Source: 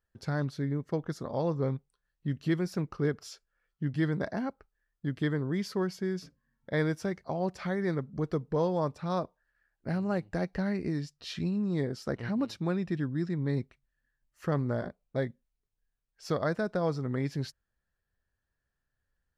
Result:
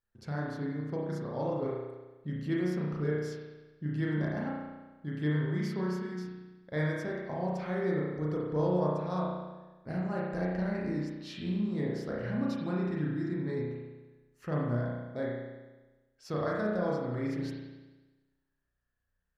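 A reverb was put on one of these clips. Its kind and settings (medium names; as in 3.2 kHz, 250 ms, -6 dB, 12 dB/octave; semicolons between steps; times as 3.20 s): spring tank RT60 1.2 s, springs 33 ms, chirp 60 ms, DRR -4.5 dB; trim -7 dB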